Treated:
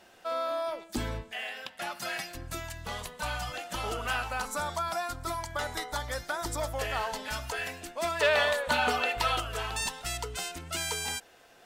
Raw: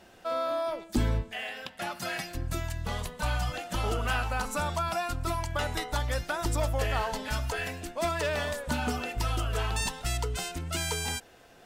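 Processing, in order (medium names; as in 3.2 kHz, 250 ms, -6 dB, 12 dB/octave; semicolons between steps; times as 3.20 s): 4.47–6.73 s: peaking EQ 2.7 kHz -11.5 dB 0.22 oct; 8.21–9.40 s: time-frequency box 410–4600 Hz +8 dB; bass shelf 320 Hz -10 dB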